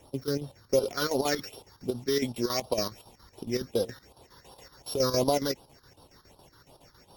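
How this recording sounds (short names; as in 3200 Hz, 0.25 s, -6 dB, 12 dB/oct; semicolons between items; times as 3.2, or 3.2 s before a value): a buzz of ramps at a fixed pitch in blocks of 8 samples; chopped level 7.2 Hz, depth 65%, duty 70%; phasing stages 6, 2.7 Hz, lowest notch 650–2000 Hz; Opus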